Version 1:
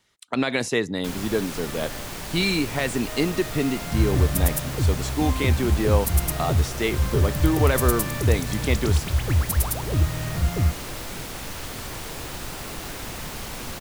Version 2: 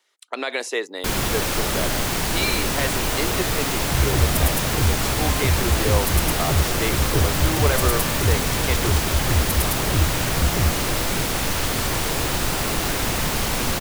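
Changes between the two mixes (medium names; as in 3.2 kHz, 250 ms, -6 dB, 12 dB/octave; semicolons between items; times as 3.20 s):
speech: add high-pass 370 Hz 24 dB/octave; first sound +11.0 dB; reverb: off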